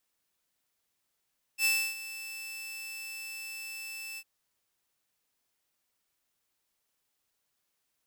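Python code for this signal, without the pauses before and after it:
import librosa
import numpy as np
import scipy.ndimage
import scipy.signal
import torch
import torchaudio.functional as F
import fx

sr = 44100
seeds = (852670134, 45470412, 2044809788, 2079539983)

y = fx.adsr_tone(sr, wave='saw', hz=2640.0, attack_ms=68.0, decay_ms=296.0, sustain_db=-16.0, held_s=2.6, release_ms=53.0, level_db=-20.5)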